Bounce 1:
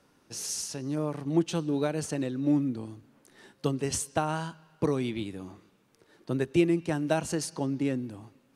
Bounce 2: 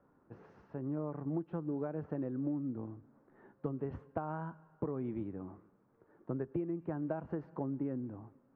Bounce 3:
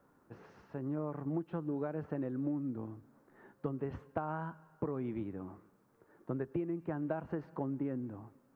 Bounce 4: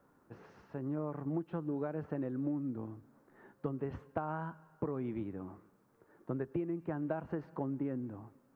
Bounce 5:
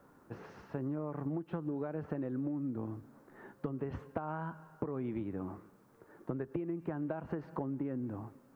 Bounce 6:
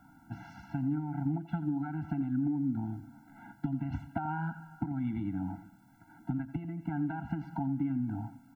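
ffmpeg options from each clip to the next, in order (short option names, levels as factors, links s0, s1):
-af "lowpass=f=1400:w=0.5412,lowpass=f=1400:w=1.3066,acompressor=threshold=0.0355:ratio=12,volume=0.668"
-af "highshelf=f=2000:g=11"
-af anull
-af "acompressor=threshold=0.0112:ratio=10,volume=2"
-af "aecho=1:1:87:0.188,afftfilt=real='re*eq(mod(floor(b*sr/1024/330),2),0)':imag='im*eq(mod(floor(b*sr/1024/330),2),0)':win_size=1024:overlap=0.75,volume=2"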